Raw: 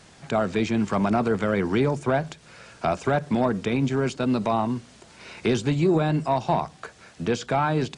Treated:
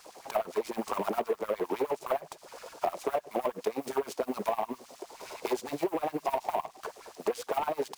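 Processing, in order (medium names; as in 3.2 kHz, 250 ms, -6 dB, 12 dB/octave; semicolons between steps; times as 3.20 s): saturation -18.5 dBFS, distortion -14 dB; high-order bell 2.3 kHz -15 dB; careless resampling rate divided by 3×, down filtered, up hold; LFO high-pass sine 9.7 Hz 400–2300 Hz; compression 6:1, threshold -31 dBFS, peak gain reduction 13 dB; delay time shaken by noise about 1.4 kHz, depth 0.031 ms; trim +4 dB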